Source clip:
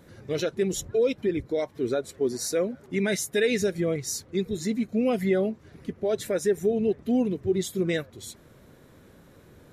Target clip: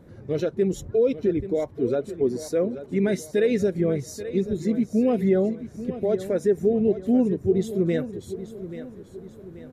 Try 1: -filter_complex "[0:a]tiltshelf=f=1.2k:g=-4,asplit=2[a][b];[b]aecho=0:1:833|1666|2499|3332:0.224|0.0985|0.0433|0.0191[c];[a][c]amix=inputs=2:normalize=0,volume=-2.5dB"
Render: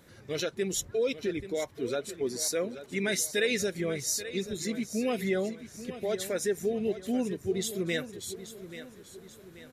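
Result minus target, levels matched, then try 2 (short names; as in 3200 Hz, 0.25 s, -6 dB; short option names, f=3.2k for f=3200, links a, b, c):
1000 Hz band +3.5 dB
-filter_complex "[0:a]tiltshelf=f=1.2k:g=7,asplit=2[a][b];[b]aecho=0:1:833|1666|2499|3332:0.224|0.0985|0.0433|0.0191[c];[a][c]amix=inputs=2:normalize=0,volume=-2.5dB"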